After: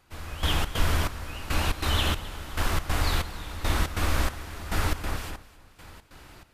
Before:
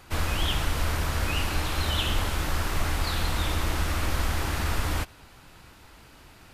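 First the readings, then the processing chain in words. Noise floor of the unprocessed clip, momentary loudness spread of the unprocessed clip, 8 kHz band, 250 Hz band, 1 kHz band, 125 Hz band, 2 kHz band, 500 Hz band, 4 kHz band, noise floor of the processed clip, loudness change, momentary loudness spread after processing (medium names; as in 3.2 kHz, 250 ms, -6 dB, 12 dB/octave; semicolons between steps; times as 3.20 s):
-52 dBFS, 2 LU, -1.5 dB, -0.5 dB, -0.5 dB, -1.0 dB, -1.0 dB, -0.5 dB, -1.0 dB, -58 dBFS, -1.0 dB, 11 LU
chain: echo whose repeats swap between lows and highs 131 ms, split 2.1 kHz, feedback 69%, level -2.5 dB; trance gate "....xx.xxx" 140 bpm -12 dB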